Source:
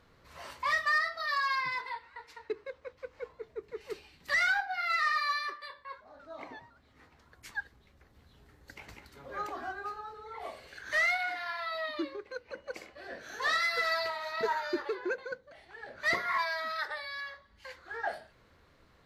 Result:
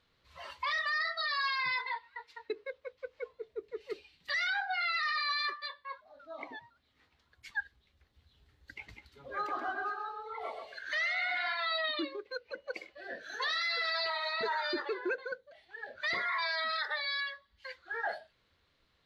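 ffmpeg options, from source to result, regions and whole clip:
-filter_complex "[0:a]asettb=1/sr,asplit=3[s0][s1][s2];[s0]atrim=end=9.354[s3];[s1]atrim=start=9.35:end=11.55,asetpts=PTS-STARTPTS,afade=t=in:d=0.004:c=qsin,afade=t=out:st=2.196:d=0.004:c=qsin,lowshelf=f=69:g=-10.5,asplit=2[s4][s5];[s5]adelay=130,lowpass=f=4800:p=1,volume=0.631,asplit=2[s6][s7];[s7]adelay=130,lowpass=f=4800:p=1,volume=0.35,asplit=2[s8][s9];[s9]adelay=130,lowpass=f=4800:p=1,volume=0.35,asplit=2[s10][s11];[s11]adelay=130,lowpass=f=4800:p=1,volume=0.35[s12];[s4][s6][s8][s10][s12]amix=inputs=5:normalize=0,atrim=end_sample=97020[s13];[s2]atrim=start=11.546[s14];[s3][s13]acrossfade=d=0.004:c1=hsin:c2=qsin[s15];[s15][s14]acrossfade=d=0.004:c1=qsin:c2=hsin,afftdn=nr=13:nf=-44,equalizer=f=3500:w=0.99:g=12,alimiter=level_in=1.19:limit=0.0631:level=0:latency=1:release=22,volume=0.841"

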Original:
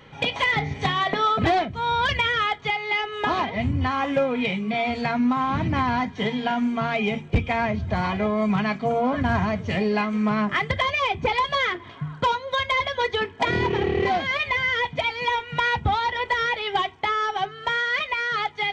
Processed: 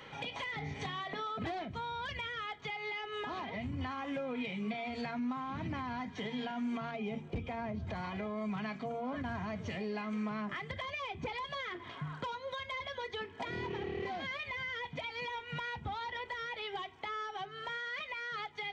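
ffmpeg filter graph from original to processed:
-filter_complex "[0:a]asettb=1/sr,asplit=3[s0][s1][s2];[s0]atrim=end=6.914[s3];[s1]atrim=start=6.91:end=7.87,asetpts=PTS-STARTPTS,afade=t=in:d=0.004:c=qsin,afade=t=out:st=0.956:d=0.004:c=qsin,lowpass=f=3700:p=1,equalizer=f=2200:t=o:w=2:g=-7[s4];[s2]atrim=start=7.866[s5];[s3][s4]acrossfade=d=0.004:c1=hsin:c2=qsin[s6];[s6][s5]acrossfade=d=0.004:c1=qsin:c2=hsin,alimiter=limit=0.0668:level=0:latency=1:release=122,lowshelf=f=260:g=-10.5,acrossover=split=320[s7][s8];[s8]acompressor=threshold=0.00562:ratio=2[s9];[s7][s9]amix=inputs=2:normalize=0"

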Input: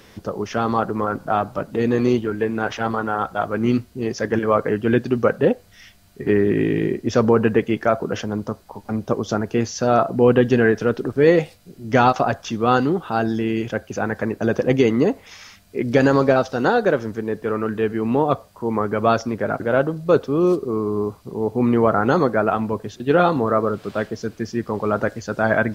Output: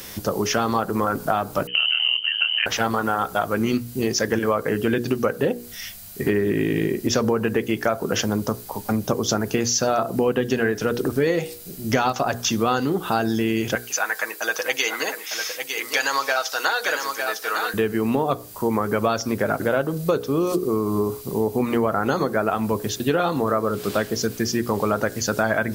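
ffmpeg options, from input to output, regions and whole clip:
-filter_complex "[0:a]asettb=1/sr,asplit=3[s0][s1][s2];[s0]atrim=end=1.674[s3];[s1]atrim=start=1.67:end=2.66,asetpts=PTS-STARTPTS,afade=t=in:d=0.004:c=qsin,afade=t=out:st=0.986:d=0.004:c=qsin,aeval=exprs='val(0)*sin(2*PI*39*n/s)':c=same,lowpass=f=2700:t=q:w=0.5098,lowpass=f=2700:t=q:w=0.6013,lowpass=f=2700:t=q:w=0.9,lowpass=f=2700:t=q:w=2.563,afreqshift=-3200[s4];[s2]atrim=start=2.656[s5];[s3][s4]acrossfade=d=0.004:c1=hsin:c2=qsin[s6];[s6][s5]acrossfade=d=0.004:c1=qsin:c2=hsin,asettb=1/sr,asplit=3[s7][s8][s9];[s7]atrim=end=13.754[s10];[s8]atrim=start=13.75:end=17.74,asetpts=PTS-STARTPTS,afade=t=in:d=0.004:c=qsin,afade=t=out:st=3.986:d=0.004:c=qsin,highpass=1100,aecho=1:1:6.3:0.4,atrim=end_sample=175959,aecho=1:1:904:0.355,atrim=end_sample=175959[s11];[s9]atrim=start=17.736[s12];[s10][s11]acrossfade=d=0.004:c1=hsin:c2=qsin[s13];[s13][s12]acrossfade=d=0.004:c1=qsin:c2=hsin,aemphasis=mode=production:type=75fm,bandreject=f=60:t=h:w=6,bandreject=f=120:t=h:w=6,bandreject=f=180:t=h:w=6,bandreject=f=240:t=h:w=6,bandreject=f=300:t=h:w=6,bandreject=f=360:t=h:w=6,bandreject=f=420:t=h:w=6,bandreject=f=480:t=h:w=6,acompressor=threshold=0.0631:ratio=6,volume=2"

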